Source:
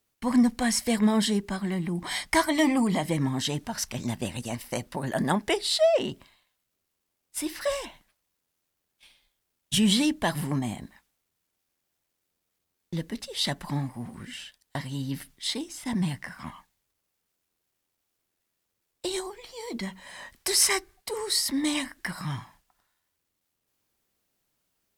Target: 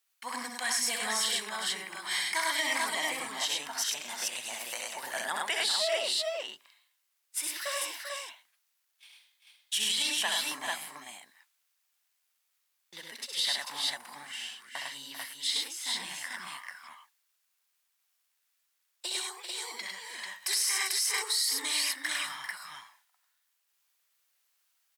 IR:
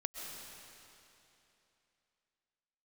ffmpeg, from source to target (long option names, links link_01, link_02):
-filter_complex "[0:a]highpass=1200,asplit=2[link_01][link_02];[link_02]aecho=0:1:65|102|393|442:0.501|0.668|0.316|0.668[link_03];[link_01][link_03]amix=inputs=2:normalize=0,alimiter=limit=-19dB:level=0:latency=1:release=56"